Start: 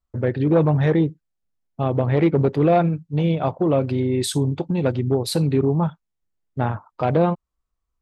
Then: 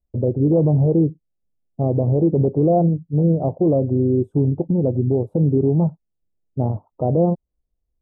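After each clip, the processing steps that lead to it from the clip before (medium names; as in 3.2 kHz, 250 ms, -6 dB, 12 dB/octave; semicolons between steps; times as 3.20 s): inverse Chebyshev low-pass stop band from 1.7 kHz, stop band 50 dB; loudness maximiser +11.5 dB; trim -8 dB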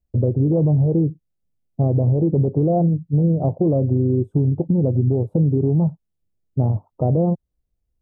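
peaking EQ 110 Hz +6.5 dB 1.6 oct; compression, threshold -14 dBFS, peak gain reduction 6 dB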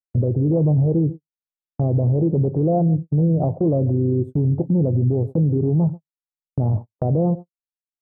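delay 139 ms -21.5 dB; gate -26 dBFS, range -49 dB; peak limiter -16 dBFS, peak gain reduction 8 dB; trim +4 dB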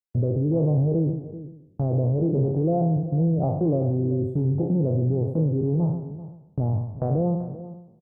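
spectral sustain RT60 0.80 s; delay 387 ms -15 dB; trim -5 dB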